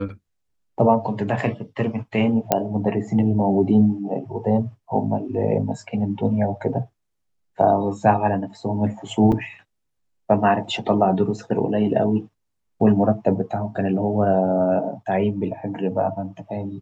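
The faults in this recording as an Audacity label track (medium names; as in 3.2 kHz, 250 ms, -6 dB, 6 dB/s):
2.520000	2.520000	pop -3 dBFS
9.320000	9.320000	dropout 4.9 ms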